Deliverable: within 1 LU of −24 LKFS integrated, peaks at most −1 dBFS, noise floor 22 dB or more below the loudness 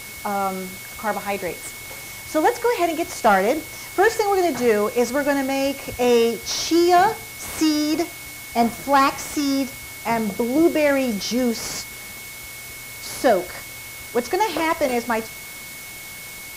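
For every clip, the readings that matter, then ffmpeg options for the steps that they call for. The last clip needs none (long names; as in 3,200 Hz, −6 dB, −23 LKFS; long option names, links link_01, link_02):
interfering tone 2,200 Hz; level of the tone −38 dBFS; background noise floor −37 dBFS; target noise floor −44 dBFS; integrated loudness −21.5 LKFS; sample peak −7.5 dBFS; target loudness −24.0 LKFS
→ -af "bandreject=frequency=2200:width=30"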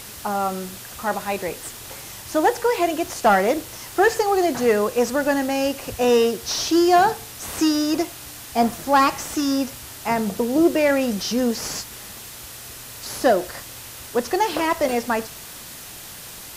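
interfering tone none found; background noise floor −38 dBFS; target noise floor −44 dBFS
→ -af "afftdn=noise_reduction=6:noise_floor=-38"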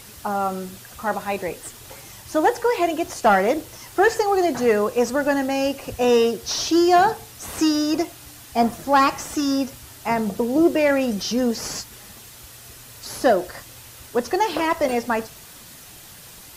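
background noise floor −43 dBFS; target noise floor −44 dBFS
→ -af "afftdn=noise_reduction=6:noise_floor=-43"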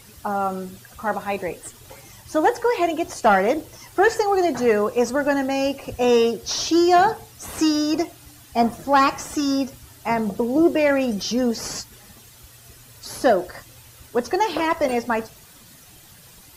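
background noise floor −48 dBFS; integrated loudness −21.5 LKFS; sample peak −7.5 dBFS; target loudness −24.0 LKFS
→ -af "volume=-2.5dB"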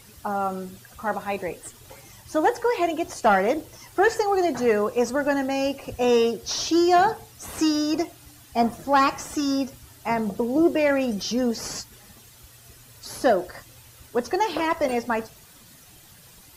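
integrated loudness −24.0 LKFS; sample peak −10.0 dBFS; background noise floor −50 dBFS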